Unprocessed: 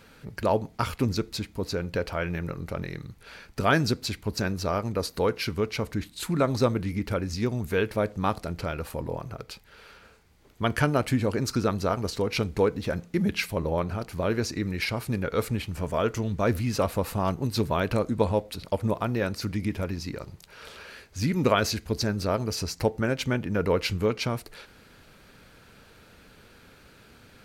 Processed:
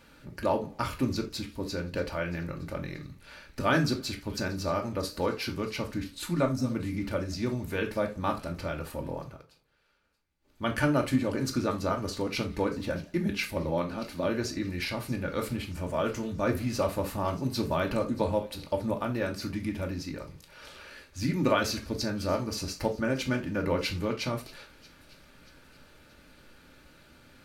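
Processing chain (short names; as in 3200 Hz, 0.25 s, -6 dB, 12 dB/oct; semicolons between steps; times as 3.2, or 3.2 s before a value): 6.46–6.71 spectral gain 300–5000 Hz -14 dB; 13.69–14.26 fifteen-band EQ 100 Hz -12 dB, 250 Hz +5 dB, 4000 Hz +7 dB; thin delay 0.631 s, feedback 49%, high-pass 2900 Hz, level -18 dB; reverb, pre-delay 3 ms, DRR 2 dB; 9.2–10.69 dip -18 dB, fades 0.29 s; warbling echo 86 ms, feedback 55%, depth 124 cents, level -22 dB; gain -5 dB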